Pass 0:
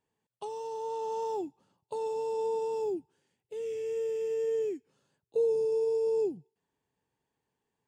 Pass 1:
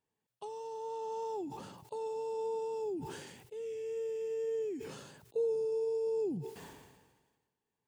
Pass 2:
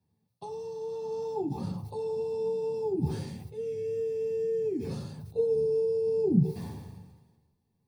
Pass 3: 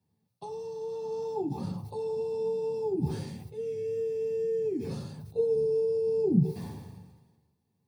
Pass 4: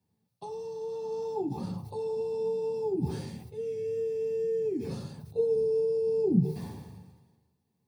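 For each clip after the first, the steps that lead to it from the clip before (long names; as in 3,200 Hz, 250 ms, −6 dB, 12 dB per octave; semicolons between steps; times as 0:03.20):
level that may fall only so fast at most 43 dB per second; level −5 dB
convolution reverb RT60 0.30 s, pre-delay 3 ms, DRR 0 dB; level −4.5 dB
high-pass filter 79 Hz
mains-hum notches 50/100/150 Hz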